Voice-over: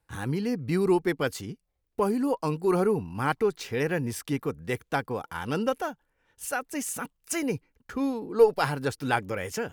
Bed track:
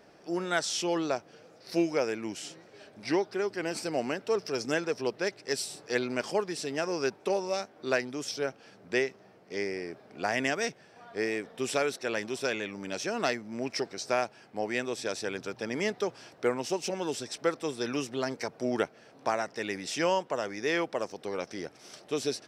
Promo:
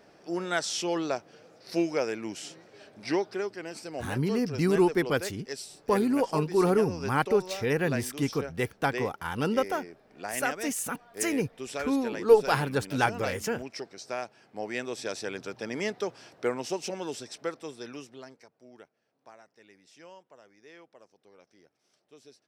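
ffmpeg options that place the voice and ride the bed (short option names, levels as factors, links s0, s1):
-filter_complex "[0:a]adelay=3900,volume=1.06[s0];[1:a]volume=1.88,afade=t=out:st=3.33:d=0.3:silence=0.473151,afade=t=in:st=14.14:d=0.87:silence=0.530884,afade=t=out:st=16.74:d=1.75:silence=0.0794328[s1];[s0][s1]amix=inputs=2:normalize=0"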